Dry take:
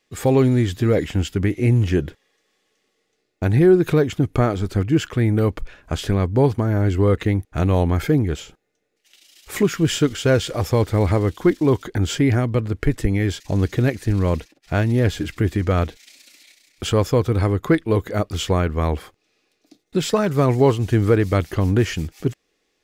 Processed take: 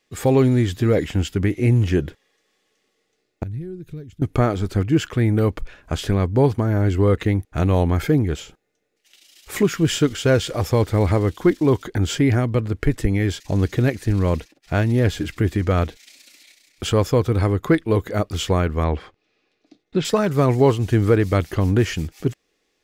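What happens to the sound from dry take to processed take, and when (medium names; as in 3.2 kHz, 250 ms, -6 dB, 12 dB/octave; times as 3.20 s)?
3.43–4.22 s: amplifier tone stack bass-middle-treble 10-0-1
18.84–20.05 s: low-pass 4 kHz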